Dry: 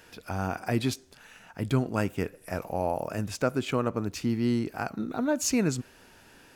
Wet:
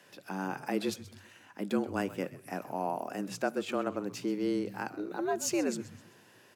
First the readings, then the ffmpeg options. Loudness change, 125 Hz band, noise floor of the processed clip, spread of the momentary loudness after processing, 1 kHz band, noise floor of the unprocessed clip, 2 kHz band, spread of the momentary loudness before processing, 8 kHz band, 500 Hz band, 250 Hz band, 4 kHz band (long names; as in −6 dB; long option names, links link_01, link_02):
−4.5 dB, −14.0 dB, −60 dBFS, 11 LU, −2.5 dB, −56 dBFS, −3.5 dB, 10 LU, −5.0 dB, −3.0 dB, −4.5 dB, −5.0 dB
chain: -filter_complex "[0:a]asplit=5[link_01][link_02][link_03][link_04][link_05];[link_02]adelay=129,afreqshift=-130,volume=-16dB[link_06];[link_03]adelay=258,afreqshift=-260,volume=-23.5dB[link_07];[link_04]adelay=387,afreqshift=-390,volume=-31.1dB[link_08];[link_05]adelay=516,afreqshift=-520,volume=-38.6dB[link_09];[link_01][link_06][link_07][link_08][link_09]amix=inputs=5:normalize=0,afreqshift=94,volume=-5dB"